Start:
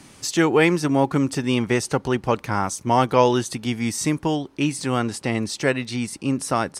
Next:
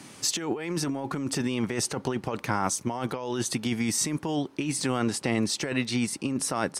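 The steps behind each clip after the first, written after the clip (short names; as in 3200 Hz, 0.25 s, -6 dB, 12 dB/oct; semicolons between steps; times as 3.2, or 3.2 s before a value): HPF 120 Hz 12 dB/oct; negative-ratio compressor -25 dBFS, ratio -1; gain -3 dB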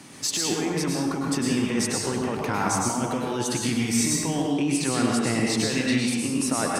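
in parallel at -11 dB: overloaded stage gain 21.5 dB; on the sum: plate-style reverb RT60 1.1 s, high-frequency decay 0.75×, pre-delay 90 ms, DRR -2 dB; gain -2 dB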